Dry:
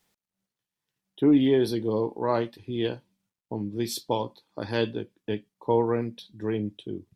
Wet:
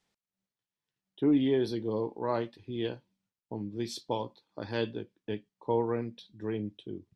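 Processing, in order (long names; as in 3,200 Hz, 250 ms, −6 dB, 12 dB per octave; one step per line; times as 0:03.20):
low-pass filter 7,000 Hz 12 dB per octave
level −5.5 dB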